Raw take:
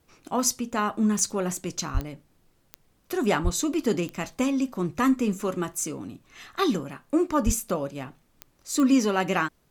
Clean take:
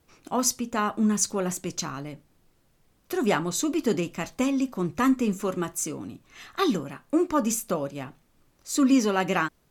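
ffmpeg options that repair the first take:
-filter_complex "[0:a]adeclick=t=4,asplit=3[a][b][c];[a]afade=t=out:st=1.93:d=0.02[d];[b]highpass=f=140:w=0.5412,highpass=f=140:w=1.3066,afade=t=in:st=1.93:d=0.02,afade=t=out:st=2.05:d=0.02[e];[c]afade=t=in:st=2.05:d=0.02[f];[d][e][f]amix=inputs=3:normalize=0,asplit=3[g][h][i];[g]afade=t=out:st=3.43:d=0.02[j];[h]highpass=f=140:w=0.5412,highpass=f=140:w=1.3066,afade=t=in:st=3.43:d=0.02,afade=t=out:st=3.55:d=0.02[k];[i]afade=t=in:st=3.55:d=0.02[l];[j][k][l]amix=inputs=3:normalize=0,asplit=3[m][n][o];[m]afade=t=out:st=7.45:d=0.02[p];[n]highpass=f=140:w=0.5412,highpass=f=140:w=1.3066,afade=t=in:st=7.45:d=0.02,afade=t=out:st=7.57:d=0.02[q];[o]afade=t=in:st=7.57:d=0.02[r];[p][q][r]amix=inputs=3:normalize=0"

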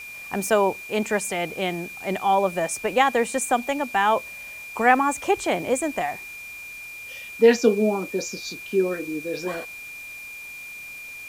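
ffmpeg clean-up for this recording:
-af "bandreject=f=2.4k:w=30,afftdn=nr=29:nf=-39"

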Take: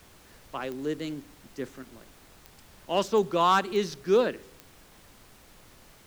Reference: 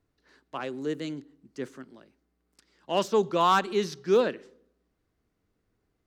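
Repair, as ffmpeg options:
-af "adeclick=t=4,afftdn=nr=22:nf=-55"

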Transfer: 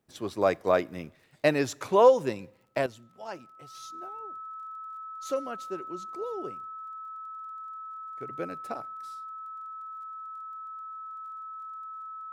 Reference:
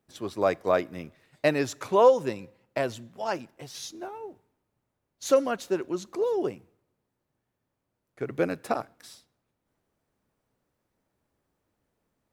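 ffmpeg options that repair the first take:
-af "adeclick=t=4,bandreject=f=1.3k:w=30,asetnsamples=n=441:p=0,asendcmd='2.86 volume volume 9.5dB',volume=0dB"

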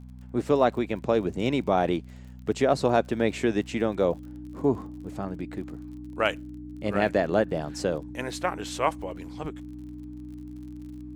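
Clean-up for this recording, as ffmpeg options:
-af "adeclick=t=4,bandreject=f=62.4:t=h:w=4,bandreject=f=124.8:t=h:w=4,bandreject=f=187.2:t=h:w=4,bandreject=f=249.6:t=h:w=4,bandreject=f=300:w=30"

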